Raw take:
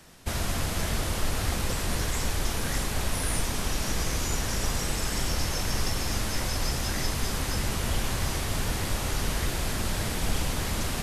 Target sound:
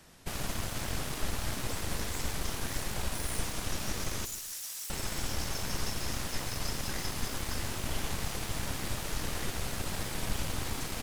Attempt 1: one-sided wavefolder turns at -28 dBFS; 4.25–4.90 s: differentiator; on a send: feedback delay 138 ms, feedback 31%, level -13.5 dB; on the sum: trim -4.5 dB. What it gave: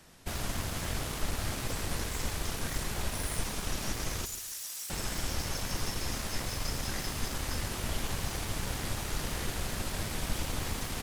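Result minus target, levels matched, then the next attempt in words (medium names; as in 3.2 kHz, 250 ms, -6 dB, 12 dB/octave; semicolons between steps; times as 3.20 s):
one-sided wavefolder: distortion -9 dB
one-sided wavefolder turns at -34.5 dBFS; 4.25–4.90 s: differentiator; on a send: feedback delay 138 ms, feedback 31%, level -13.5 dB; on the sum: trim -4.5 dB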